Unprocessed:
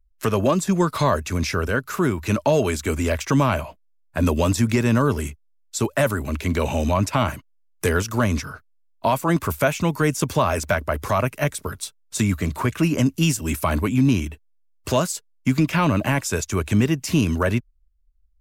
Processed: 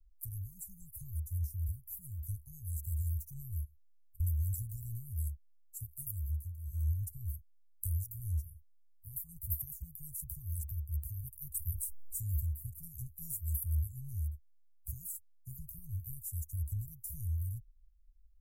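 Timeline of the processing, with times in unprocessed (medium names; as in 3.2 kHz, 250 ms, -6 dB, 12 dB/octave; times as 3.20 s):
3.64–4.20 s: compression, threshold -43 dBFS
6.29–6.85 s: dip -13 dB, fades 0.28 s
11.54–12.43 s: level flattener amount 50%
whole clip: inverse Chebyshev band-stop 290–3500 Hz, stop band 70 dB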